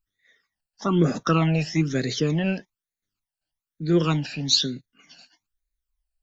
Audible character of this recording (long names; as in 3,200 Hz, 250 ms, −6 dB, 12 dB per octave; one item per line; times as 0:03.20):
phaser sweep stages 12, 1.1 Hz, lowest notch 350–1,000 Hz